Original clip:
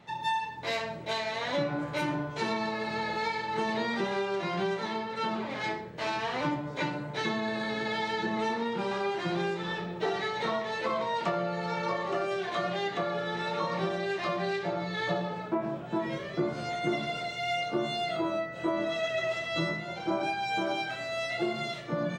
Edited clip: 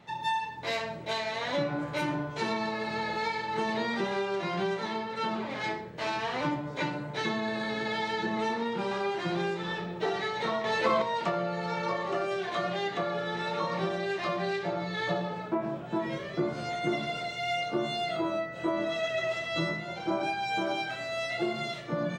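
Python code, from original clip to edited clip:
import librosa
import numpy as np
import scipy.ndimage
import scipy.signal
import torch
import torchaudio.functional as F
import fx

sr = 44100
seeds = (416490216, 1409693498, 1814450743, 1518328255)

y = fx.edit(x, sr, fx.clip_gain(start_s=10.64, length_s=0.38, db=5.0), tone=tone)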